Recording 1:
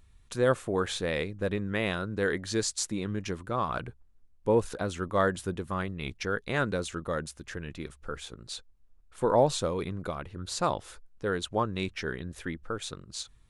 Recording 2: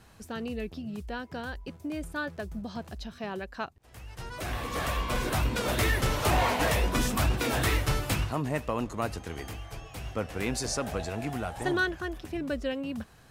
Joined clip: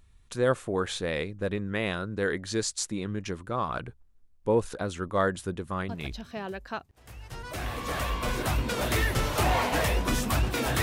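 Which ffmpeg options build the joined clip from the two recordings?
-filter_complex "[0:a]apad=whole_dur=10.82,atrim=end=10.82,atrim=end=6.21,asetpts=PTS-STARTPTS[s0];[1:a]atrim=start=2.76:end=7.69,asetpts=PTS-STARTPTS[s1];[s0][s1]acrossfade=d=0.32:c1=log:c2=log"

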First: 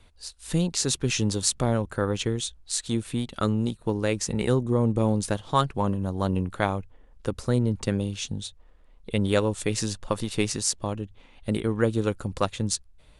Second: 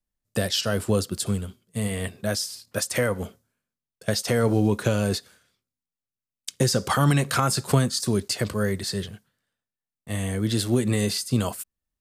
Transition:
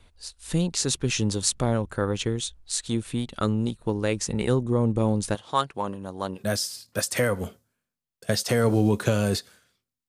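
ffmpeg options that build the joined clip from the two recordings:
-filter_complex "[0:a]asettb=1/sr,asplit=3[s0][s1][s2];[s0]atrim=end=5.354[s3];[s1]atrim=start=5.35:end=6.39,asetpts=PTS-STARTPTS,afade=t=in:d=0.004:c=qsin,afade=t=out:st=1.036:d=0.004:c=qsin,highpass=f=450:p=1[s4];[s2]atrim=start=6.386[s5];[s3][s4]acrossfade=d=0.004:c1=hsin:c2=qsin[s6];[s6][s5]acrossfade=d=0.004:c1=qsin:c2=hsin,apad=whole_dur=10.08,atrim=end=10.08,atrim=end=6.39,asetpts=PTS-STARTPTS[s7];[1:a]atrim=start=2.12:end=5.87,asetpts=PTS-STARTPTS[s8];[s7][s8]acrossfade=d=0.06:c1=tri:c2=tri"

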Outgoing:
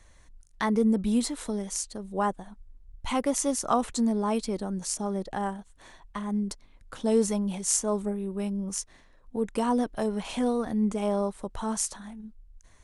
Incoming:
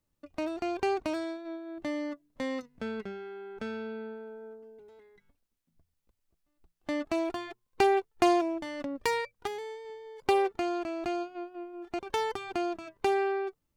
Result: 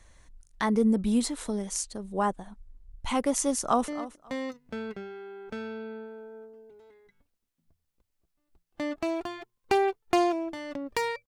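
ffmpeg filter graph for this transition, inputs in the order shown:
-filter_complex "[0:a]apad=whole_dur=11.27,atrim=end=11.27,atrim=end=3.882[s0];[1:a]atrim=start=1.968:end=9.36[s1];[s0][s1]acrossfade=d=0.004:c1=hsin:c2=hsin,asplit=2[s2][s3];[s3]afade=t=in:st=3.56:d=0.01,afade=t=out:st=3.88:d=0.01,aecho=0:1:270|540:0.177828|0.0355656[s4];[s2][s4]amix=inputs=2:normalize=0"

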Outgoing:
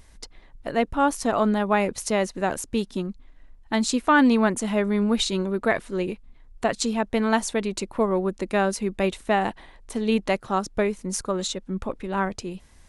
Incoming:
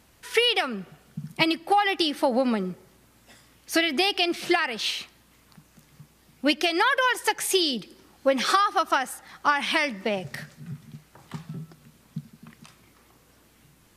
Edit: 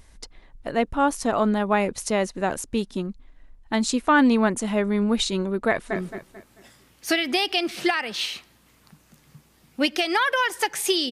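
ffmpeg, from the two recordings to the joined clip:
-filter_complex "[0:a]apad=whole_dur=11.11,atrim=end=11.11,atrim=end=5.962[s0];[1:a]atrim=start=2.608:end=7.76[s1];[s0][s1]acrossfade=d=0.004:c1=hsin:c2=hsin,asplit=2[s2][s3];[s3]afade=t=in:st=5.68:d=0.01,afade=t=out:st=5.96:d=0.01,aecho=0:1:220|440|660|880:0.446684|0.156339|0.0547187|0.0191516[s4];[s2][s4]amix=inputs=2:normalize=0"

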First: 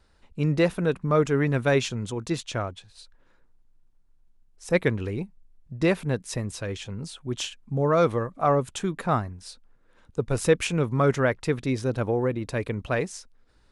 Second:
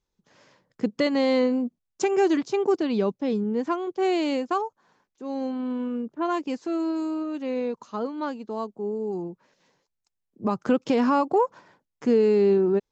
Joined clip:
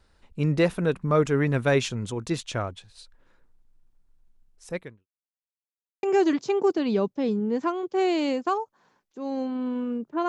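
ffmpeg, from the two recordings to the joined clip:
-filter_complex "[0:a]apad=whole_dur=10.28,atrim=end=10.28,asplit=2[s0][s1];[s0]atrim=end=5.07,asetpts=PTS-STARTPTS,afade=t=out:st=4.49:d=0.58:c=qua[s2];[s1]atrim=start=5.07:end=6.03,asetpts=PTS-STARTPTS,volume=0[s3];[1:a]atrim=start=2.07:end=6.32,asetpts=PTS-STARTPTS,afade=t=in:d=0.004:c=hsin[s4];[s2][s3][s4]concat=n=3:v=0:a=1"

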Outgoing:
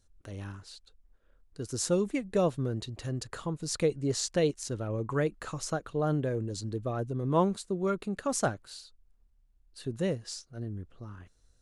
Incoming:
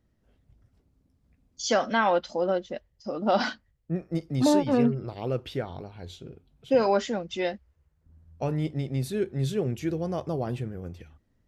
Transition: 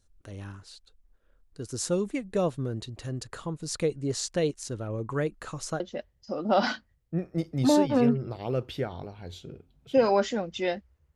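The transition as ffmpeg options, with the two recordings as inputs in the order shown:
-filter_complex "[0:a]apad=whole_dur=11.15,atrim=end=11.15,atrim=end=5.802[s0];[1:a]atrim=start=2.568:end=7.92[s1];[s0][s1]acrossfade=d=0.004:c1=hsin:c2=hsin"

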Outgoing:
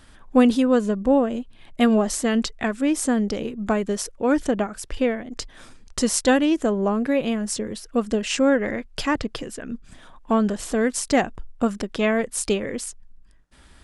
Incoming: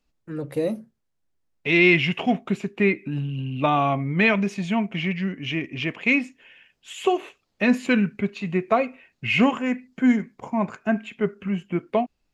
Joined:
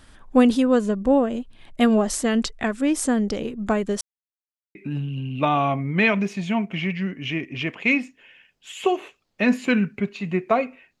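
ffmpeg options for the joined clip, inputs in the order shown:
-filter_complex "[0:a]apad=whole_dur=11,atrim=end=11,asplit=2[s0][s1];[s0]atrim=end=4.01,asetpts=PTS-STARTPTS,afade=t=out:st=4.006:d=0.004:c=hsin[s2];[s1]atrim=start=4.01:end=4.75,asetpts=PTS-STARTPTS,volume=0[s3];[1:a]atrim=start=2.96:end=9.21,asetpts=PTS-STARTPTS,afade=t=in:d=0.004:c=hsin[s4];[s2][s3][s4]concat=n=3:v=0:a=1"

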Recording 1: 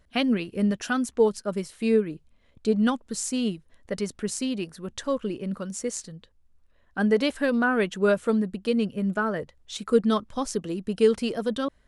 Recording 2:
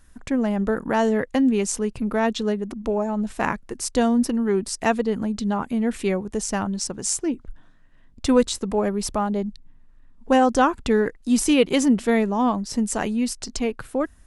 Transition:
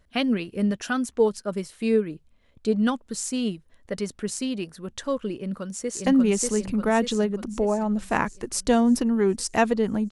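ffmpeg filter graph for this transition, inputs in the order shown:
-filter_complex "[0:a]apad=whole_dur=10.11,atrim=end=10.11,atrim=end=6.062[s0];[1:a]atrim=start=1.338:end=5.39[s1];[s0][s1]acrossfade=d=0.004:c1=hsin:c2=hsin,asplit=2[s2][s3];[s3]afade=t=in:st=5.36:d=0.01,afade=t=out:st=6.06:d=0.01,aecho=0:1:590|1180|1770|2360|2950|3540|4130|4720:0.841395|0.462767|0.254522|0.139987|0.0769929|0.0423461|0.0232904|0.0128097[s4];[s2][s4]amix=inputs=2:normalize=0"

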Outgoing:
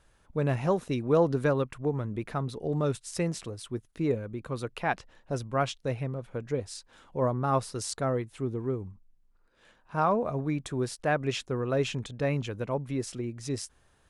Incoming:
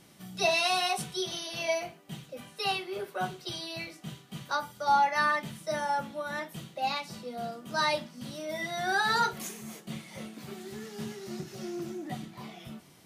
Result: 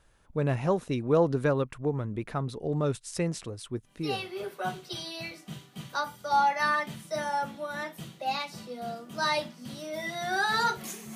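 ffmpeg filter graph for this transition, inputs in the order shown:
-filter_complex "[0:a]apad=whole_dur=11.15,atrim=end=11.15,atrim=end=4.35,asetpts=PTS-STARTPTS[s0];[1:a]atrim=start=2.39:end=9.71,asetpts=PTS-STARTPTS[s1];[s0][s1]acrossfade=d=0.52:c1=tri:c2=tri"

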